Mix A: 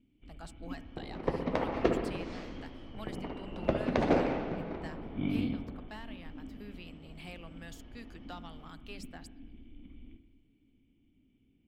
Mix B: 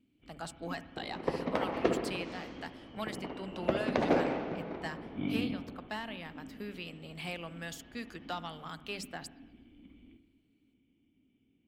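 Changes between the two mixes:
speech +8.0 dB; master: add high-pass 170 Hz 6 dB/octave

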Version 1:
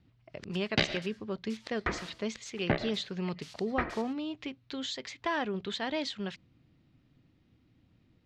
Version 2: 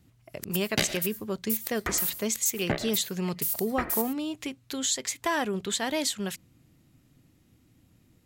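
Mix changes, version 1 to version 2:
speech +4.0 dB; master: remove low-pass 4.5 kHz 24 dB/octave

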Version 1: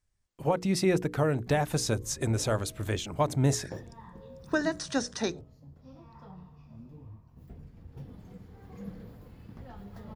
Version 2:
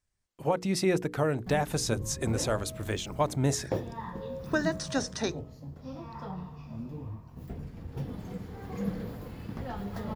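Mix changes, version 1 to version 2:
background +11.0 dB; master: add bass shelf 130 Hz -6 dB

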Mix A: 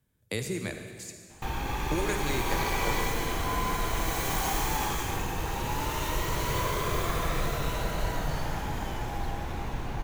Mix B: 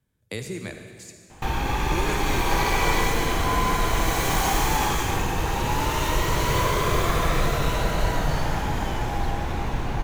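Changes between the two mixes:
background +7.0 dB; master: add treble shelf 12 kHz -7.5 dB

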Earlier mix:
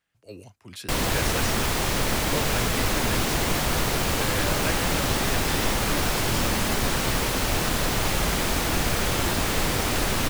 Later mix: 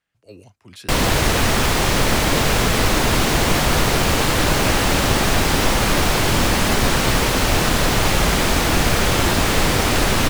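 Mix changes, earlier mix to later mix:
background +7.5 dB; master: add treble shelf 9.7 kHz -6 dB

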